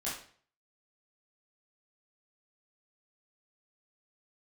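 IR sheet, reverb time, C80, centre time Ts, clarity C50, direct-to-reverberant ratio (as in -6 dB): 0.50 s, 9.0 dB, 40 ms, 4.0 dB, -9.0 dB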